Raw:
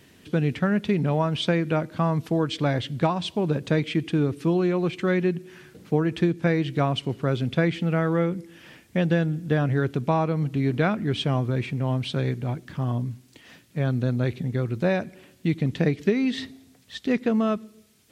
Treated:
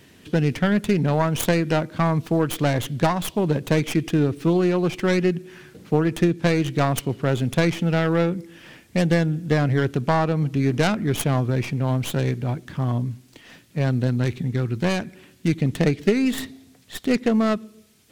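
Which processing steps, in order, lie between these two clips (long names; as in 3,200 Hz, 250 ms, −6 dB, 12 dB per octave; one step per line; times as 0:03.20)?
stylus tracing distortion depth 0.26 ms
0:14.07–0:15.48: parametric band 590 Hz −6.5 dB 0.71 octaves
level +3 dB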